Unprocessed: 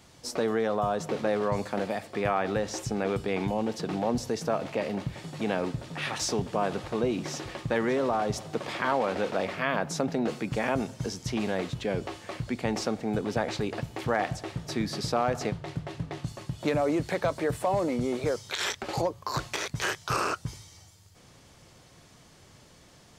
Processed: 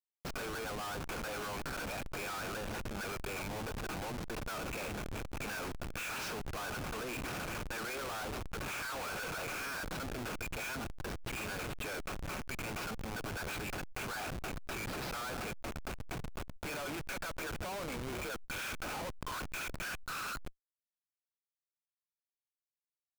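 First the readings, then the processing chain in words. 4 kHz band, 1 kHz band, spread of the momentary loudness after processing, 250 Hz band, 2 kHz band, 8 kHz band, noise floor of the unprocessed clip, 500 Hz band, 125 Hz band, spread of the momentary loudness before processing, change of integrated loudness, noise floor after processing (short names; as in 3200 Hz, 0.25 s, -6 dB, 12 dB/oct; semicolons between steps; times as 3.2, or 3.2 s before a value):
-6.5 dB, -10.0 dB, 3 LU, -13.5 dB, -4.5 dB, -5.5 dB, -56 dBFS, -14.5 dB, -10.5 dB, 7 LU, -10.0 dB, under -85 dBFS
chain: double band-pass 1900 Hz, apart 0.7 oct; Schmitt trigger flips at -50.5 dBFS; backwards sustainer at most 36 dB/s; gain +5.5 dB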